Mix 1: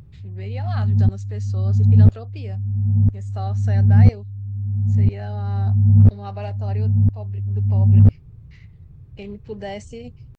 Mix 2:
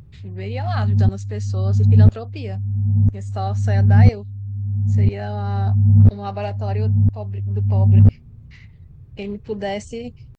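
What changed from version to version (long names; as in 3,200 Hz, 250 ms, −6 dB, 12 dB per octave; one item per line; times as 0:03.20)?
speech +6.0 dB
reverb: on, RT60 2.9 s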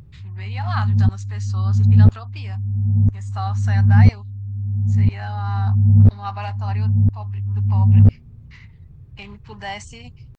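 speech: add low shelf with overshoot 710 Hz −11 dB, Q 3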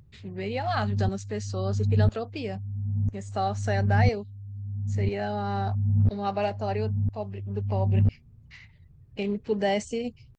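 speech: add low shelf with overshoot 710 Hz +11 dB, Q 3
background −11.0 dB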